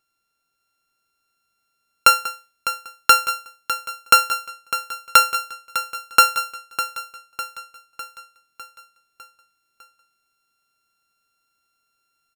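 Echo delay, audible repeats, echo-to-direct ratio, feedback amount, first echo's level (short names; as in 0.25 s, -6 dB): 0.603 s, 5, -10.5 dB, 55%, -12.0 dB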